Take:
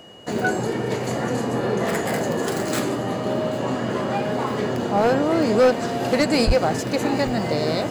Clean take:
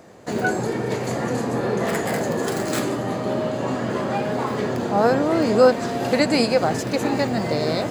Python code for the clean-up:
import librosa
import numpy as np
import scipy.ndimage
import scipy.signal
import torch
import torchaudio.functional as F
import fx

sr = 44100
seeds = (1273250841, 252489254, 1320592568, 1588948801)

y = fx.fix_declip(x, sr, threshold_db=-11.0)
y = fx.notch(y, sr, hz=2900.0, q=30.0)
y = fx.highpass(y, sr, hz=140.0, slope=24, at=(6.46, 6.58), fade=0.02)
y = fx.fix_echo_inverse(y, sr, delay_ms=787, level_db=-21.0)